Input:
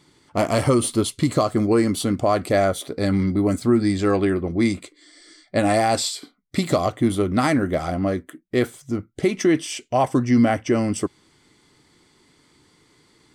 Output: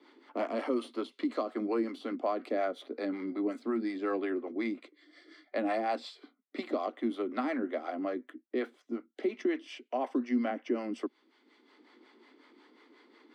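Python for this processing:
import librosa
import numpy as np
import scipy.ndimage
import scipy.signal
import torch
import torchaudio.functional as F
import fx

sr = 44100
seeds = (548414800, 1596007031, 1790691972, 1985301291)

y = scipy.signal.sosfilt(scipy.signal.butter(12, 230.0, 'highpass', fs=sr, output='sos'), x)
y = fx.high_shelf(y, sr, hz=3900.0, db=7.0)
y = fx.harmonic_tremolo(y, sr, hz=5.5, depth_pct=70, crossover_hz=500.0)
y = fx.air_absorb(y, sr, metres=340.0)
y = fx.band_squash(y, sr, depth_pct=40)
y = y * 10.0 ** (-7.5 / 20.0)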